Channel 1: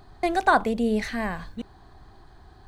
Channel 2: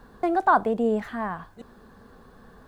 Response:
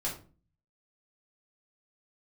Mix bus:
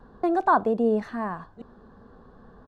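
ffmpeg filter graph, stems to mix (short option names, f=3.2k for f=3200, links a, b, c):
-filter_complex "[0:a]highshelf=f=6k:g=-5,volume=-14.5dB[a];[1:a]lowpass=3k,equalizer=f=2.3k:t=o:w=0.81:g=-12.5,volume=-1,adelay=1.9,volume=0.5dB,asplit=2[b][c];[c]apad=whole_len=117769[d];[a][d]sidechaingate=range=-33dB:threshold=-40dB:ratio=16:detection=peak[e];[e][b]amix=inputs=2:normalize=0"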